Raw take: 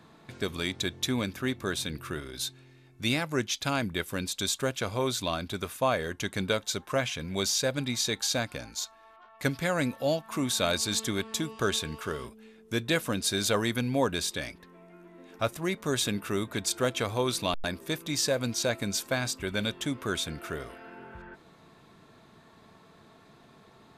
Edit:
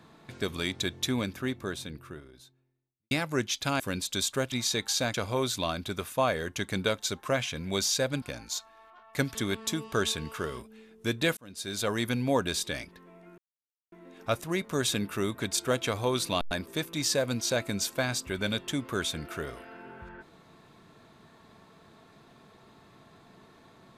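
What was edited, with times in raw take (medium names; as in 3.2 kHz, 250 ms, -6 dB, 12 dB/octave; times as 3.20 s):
0.96–3.11 s: studio fade out
3.80–4.06 s: delete
7.86–8.48 s: move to 4.78 s
9.61–11.02 s: delete
13.04–13.77 s: fade in
15.05 s: insert silence 0.54 s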